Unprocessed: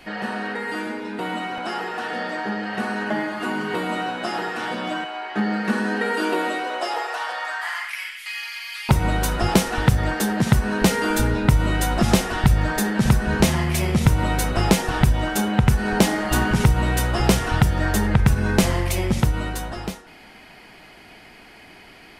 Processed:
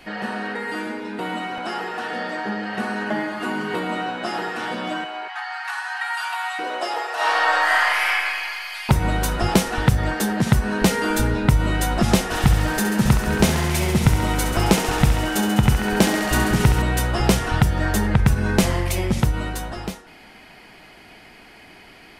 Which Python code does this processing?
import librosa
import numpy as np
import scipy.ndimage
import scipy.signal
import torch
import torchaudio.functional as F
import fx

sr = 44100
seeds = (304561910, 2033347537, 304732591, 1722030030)

y = fx.high_shelf(x, sr, hz=8800.0, db=-8.0, at=(3.79, 4.26))
y = fx.steep_highpass(y, sr, hz=730.0, slope=96, at=(5.28, 6.59))
y = fx.reverb_throw(y, sr, start_s=7.14, length_s=0.97, rt60_s=2.4, drr_db=-10.5)
y = fx.echo_thinned(y, sr, ms=68, feedback_pct=85, hz=310.0, wet_db=-8.5, at=(12.3, 16.81), fade=0.02)